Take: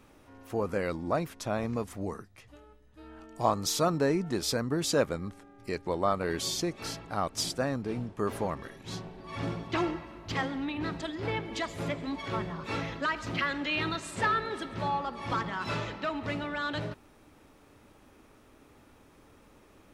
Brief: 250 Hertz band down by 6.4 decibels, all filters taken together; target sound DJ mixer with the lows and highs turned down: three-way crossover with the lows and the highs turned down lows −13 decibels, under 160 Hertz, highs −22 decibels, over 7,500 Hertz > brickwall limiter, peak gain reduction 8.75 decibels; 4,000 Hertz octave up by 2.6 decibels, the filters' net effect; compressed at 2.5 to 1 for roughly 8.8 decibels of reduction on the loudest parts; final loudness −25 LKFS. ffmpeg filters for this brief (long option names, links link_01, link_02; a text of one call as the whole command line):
ffmpeg -i in.wav -filter_complex "[0:a]equalizer=frequency=250:width_type=o:gain=-7.5,equalizer=frequency=4000:width_type=o:gain=4,acompressor=threshold=-34dB:ratio=2.5,acrossover=split=160 7500:gain=0.224 1 0.0794[link_01][link_02][link_03];[link_01][link_02][link_03]amix=inputs=3:normalize=0,volume=14dB,alimiter=limit=-13.5dB:level=0:latency=1" out.wav